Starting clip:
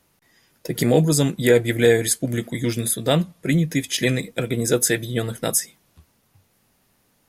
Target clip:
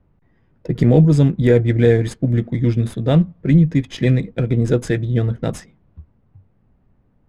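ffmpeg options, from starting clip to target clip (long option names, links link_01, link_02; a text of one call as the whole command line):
ffmpeg -i in.wav -af "adynamicsmooth=sensitivity=8:basefreq=2000,aemphasis=mode=reproduction:type=riaa,volume=-2dB" out.wav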